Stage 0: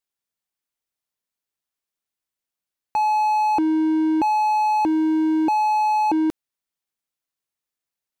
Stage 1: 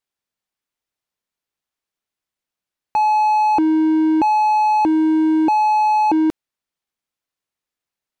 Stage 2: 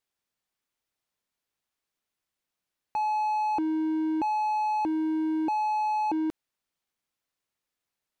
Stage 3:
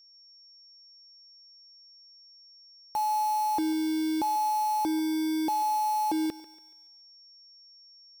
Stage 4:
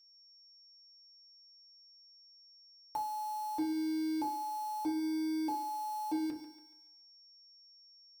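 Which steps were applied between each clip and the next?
high shelf 6800 Hz -8.5 dB; gain +4 dB
limiter -22.5 dBFS, peak gain reduction 12 dB
companded quantiser 4-bit; whine 5500 Hz -54 dBFS; thinning echo 0.142 s, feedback 44%, high-pass 390 Hz, level -16 dB
compressor, threshold -31 dBFS, peak gain reduction 5.5 dB; FDN reverb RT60 0.35 s, low-frequency decay 1.35×, high-frequency decay 0.5×, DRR 0 dB; gain -7 dB

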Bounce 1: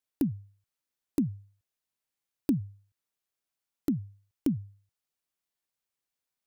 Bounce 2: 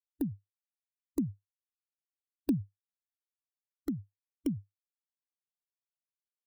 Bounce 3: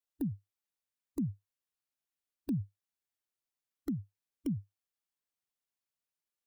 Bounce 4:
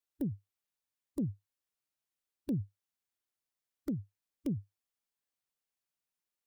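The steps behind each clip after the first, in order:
per-bin expansion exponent 3
limiter -29 dBFS, peak gain reduction 10 dB; gain +2 dB
Doppler distortion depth 0.25 ms

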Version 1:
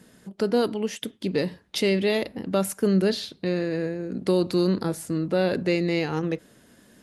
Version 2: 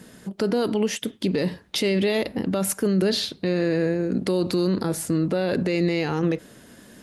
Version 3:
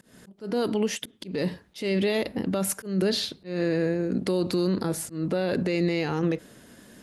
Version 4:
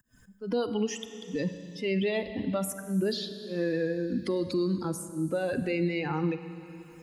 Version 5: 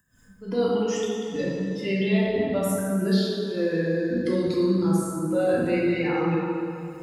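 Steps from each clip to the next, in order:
limiter -20.5 dBFS, peak gain reduction 10 dB; gain +7 dB
auto swell 0.183 s; gain -2.5 dB
per-bin expansion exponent 2; Schroeder reverb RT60 1.6 s, combs from 31 ms, DRR 11 dB; three-band squash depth 70%
plate-style reverb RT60 2.3 s, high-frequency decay 0.45×, DRR -6.5 dB; gain -2 dB

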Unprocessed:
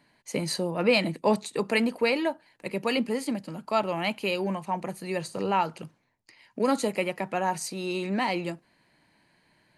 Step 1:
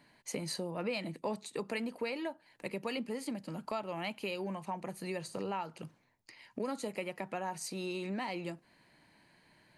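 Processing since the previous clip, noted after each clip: compressor 3:1, threshold -38 dBFS, peak gain reduction 15 dB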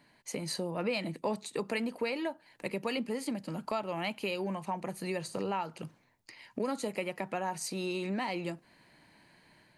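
AGC gain up to 3.5 dB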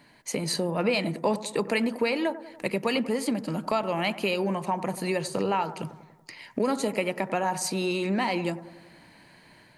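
analogue delay 95 ms, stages 1024, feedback 57%, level -14 dB; gain +7.5 dB

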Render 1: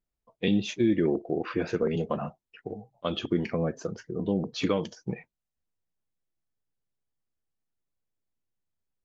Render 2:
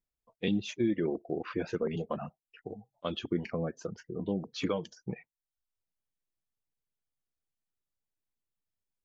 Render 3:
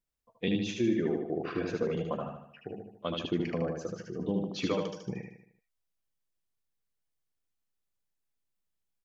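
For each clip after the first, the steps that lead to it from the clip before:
reverb removal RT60 0.54 s; gain -4.5 dB
feedback echo 76 ms, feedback 47%, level -4 dB

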